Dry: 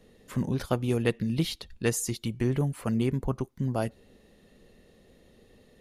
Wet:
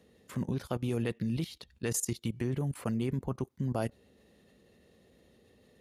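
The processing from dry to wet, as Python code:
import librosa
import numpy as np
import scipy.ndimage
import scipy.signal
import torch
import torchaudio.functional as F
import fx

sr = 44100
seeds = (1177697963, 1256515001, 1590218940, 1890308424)

y = scipy.signal.sosfilt(scipy.signal.butter(4, 54.0, 'highpass', fs=sr, output='sos'), x)
y = fx.level_steps(y, sr, step_db=16)
y = y * 10.0 ** (1.0 / 20.0)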